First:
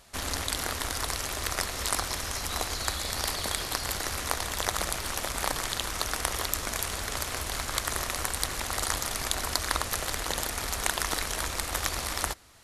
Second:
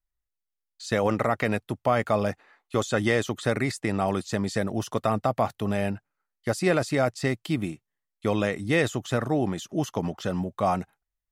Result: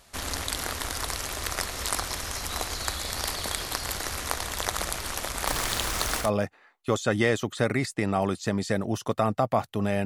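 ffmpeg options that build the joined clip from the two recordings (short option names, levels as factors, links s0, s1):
-filter_complex "[0:a]asettb=1/sr,asplit=3[s0][s1][s2];[s0]atrim=end=5.474[s3];[s1]atrim=start=5.47:end=6.31,asetpts=PTS-STARTPTS,afade=t=in:d=0.004:c=qsin,afade=t=out:st=0.836:d=0.004:c=qsin,aeval=exprs='val(0)+0.5*0.0316*sgn(val(0))':c=same[s4];[s2]atrim=start=6.306[s5];[s3][s4]acrossfade=d=0.004:c1=hsin:c2=qsin[s6];[s6][s5]acrossfade=d=0.004:c1=qsin:c2=hsin,apad=whole_dur=10.05,atrim=end=10.05,atrim=end=6.31,asetpts=PTS-STARTPTS[s7];[1:a]atrim=start=2.03:end=5.91,asetpts=PTS-STARTPTS[s8];[s7][s8]acrossfade=d=0.14:c1=tri:c2=tri"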